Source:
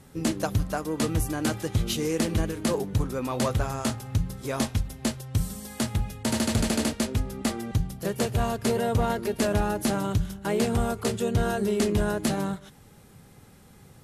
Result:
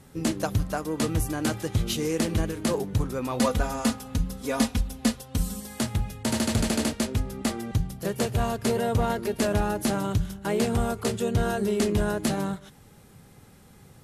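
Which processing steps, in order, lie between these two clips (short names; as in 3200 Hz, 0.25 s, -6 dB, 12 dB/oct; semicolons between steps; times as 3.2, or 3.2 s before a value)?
3.39–5.61 comb 4.1 ms, depth 79%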